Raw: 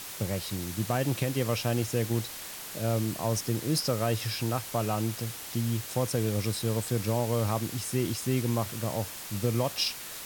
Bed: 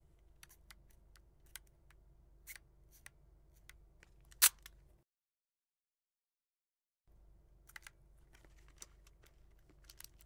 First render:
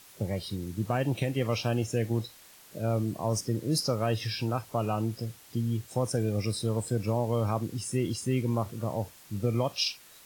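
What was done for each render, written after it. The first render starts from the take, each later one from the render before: noise print and reduce 13 dB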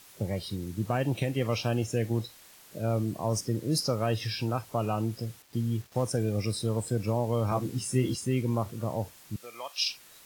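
5.42–6.05 s: dead-time distortion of 0.077 ms; 7.50–8.15 s: doubling 15 ms -3 dB; 9.36–9.89 s: high-pass 1.1 kHz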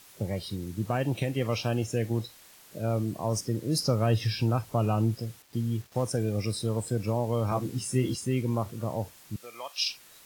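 3.80–5.15 s: bass shelf 230 Hz +7.5 dB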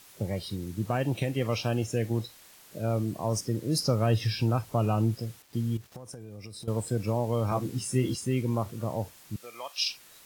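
5.77–6.68 s: compression 20:1, threshold -38 dBFS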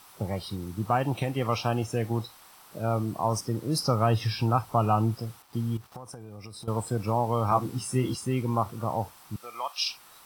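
high-order bell 1 kHz +9 dB 1.1 oct; band-stop 6.8 kHz, Q 7.8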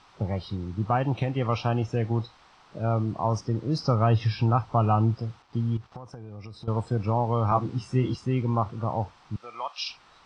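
Bessel low-pass 4 kHz, order 6; bass shelf 110 Hz +7.5 dB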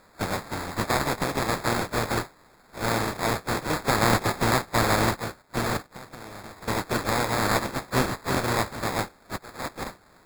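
spectral contrast reduction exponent 0.26; sample-and-hold 15×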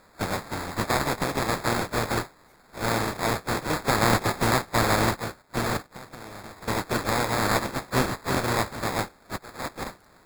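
add bed -15 dB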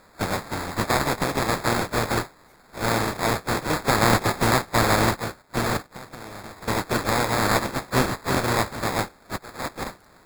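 trim +2.5 dB

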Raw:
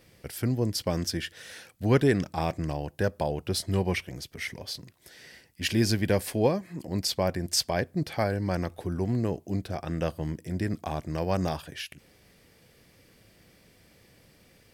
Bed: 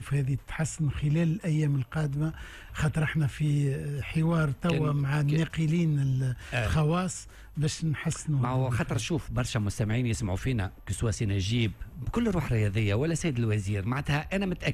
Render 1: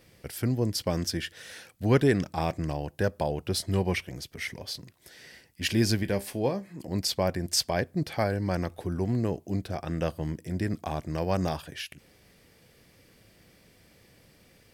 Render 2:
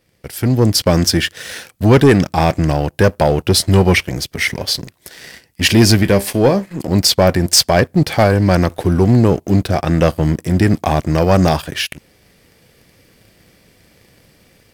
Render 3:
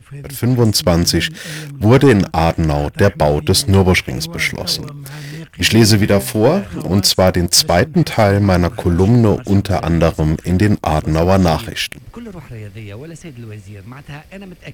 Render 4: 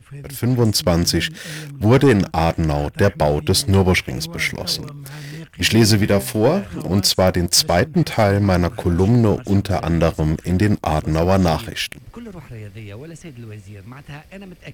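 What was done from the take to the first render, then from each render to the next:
6.03–6.80 s: feedback comb 66 Hz, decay 0.23 s
waveshaping leveller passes 2; level rider gain up to 11.5 dB
add bed -4.5 dB
trim -3.5 dB

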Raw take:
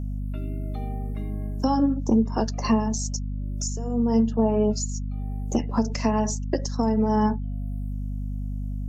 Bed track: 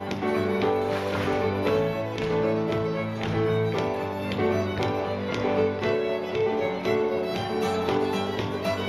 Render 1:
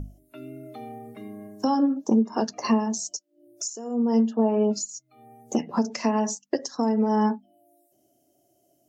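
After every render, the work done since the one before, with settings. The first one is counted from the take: hum notches 50/100/150/200/250 Hz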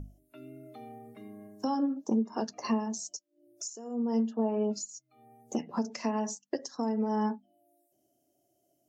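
trim -7.5 dB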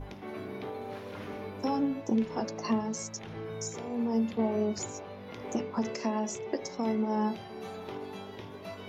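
add bed track -15.5 dB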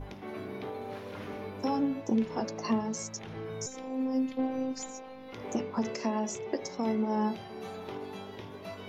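3.66–5.33 s: robot voice 261 Hz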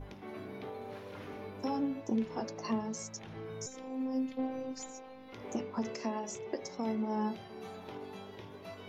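flange 0.27 Hz, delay 0.5 ms, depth 2.8 ms, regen -86%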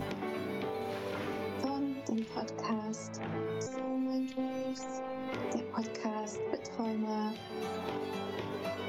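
three bands compressed up and down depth 100%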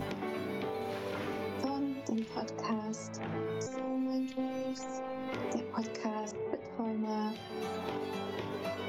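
6.31–7.04 s: distance through air 330 m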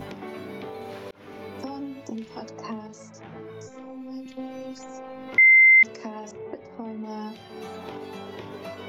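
1.11–1.64 s: fade in equal-power; 2.87–4.26 s: detune thickener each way 22 cents; 5.38–5.83 s: bleep 2.08 kHz -10.5 dBFS

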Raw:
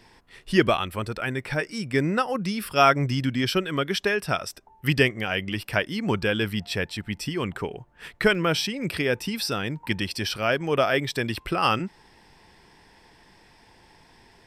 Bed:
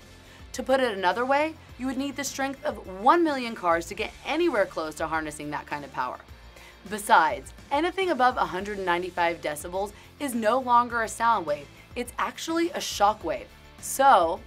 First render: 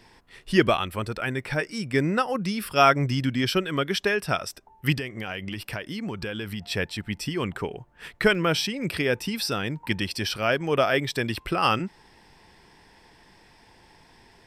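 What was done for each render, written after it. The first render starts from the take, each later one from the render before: 4.95–6.66 s: compression, threshold -28 dBFS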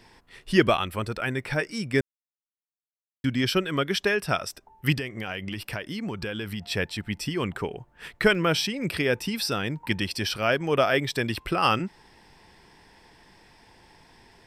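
2.01–3.24 s: mute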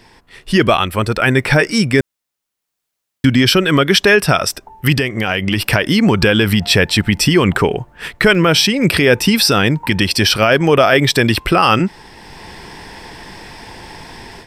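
level rider gain up to 12.5 dB; loudness maximiser +8 dB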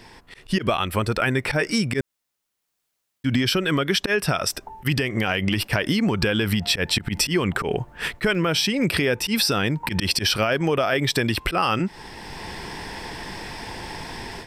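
slow attack 101 ms; compression 5:1, threshold -19 dBFS, peak gain reduction 12 dB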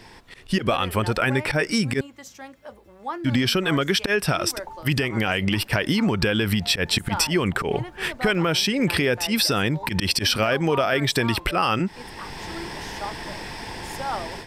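add bed -12 dB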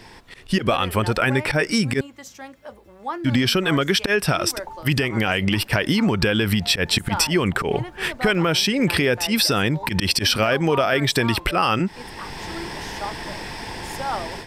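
trim +2 dB

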